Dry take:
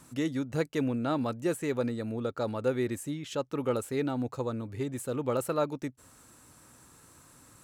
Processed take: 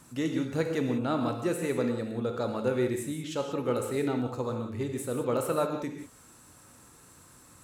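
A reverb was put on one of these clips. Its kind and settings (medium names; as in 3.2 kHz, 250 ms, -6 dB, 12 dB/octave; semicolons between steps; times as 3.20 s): gated-style reverb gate 210 ms flat, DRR 3.5 dB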